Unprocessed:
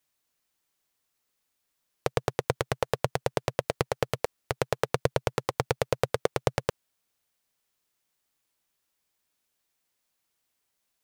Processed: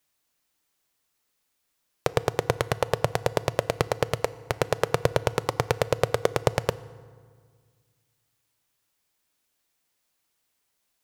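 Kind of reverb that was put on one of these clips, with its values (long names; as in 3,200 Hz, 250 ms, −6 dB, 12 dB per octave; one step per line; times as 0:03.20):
feedback delay network reverb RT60 1.8 s, low-frequency decay 1.3×, high-frequency decay 0.6×, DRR 15.5 dB
level +3 dB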